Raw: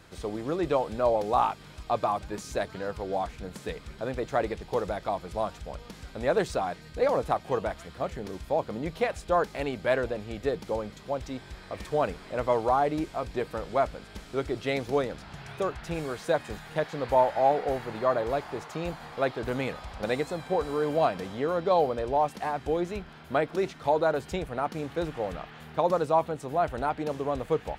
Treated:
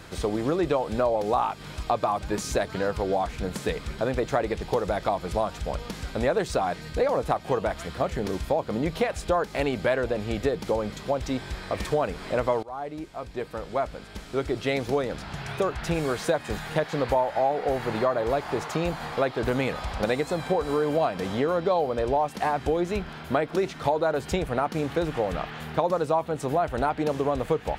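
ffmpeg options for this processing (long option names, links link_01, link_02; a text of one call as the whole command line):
ffmpeg -i in.wav -filter_complex "[0:a]asplit=2[link_01][link_02];[link_01]atrim=end=12.63,asetpts=PTS-STARTPTS,afade=type=out:start_time=12.626:duration=0.004:curve=hsin:silence=0.0707946[link_03];[link_02]atrim=start=12.63,asetpts=PTS-STARTPTS,afade=type=in:duration=3.23:silence=0.0707946[link_04];[link_03][link_04]concat=n=2:v=0:a=1,acompressor=threshold=-31dB:ratio=4,volume=9dB" out.wav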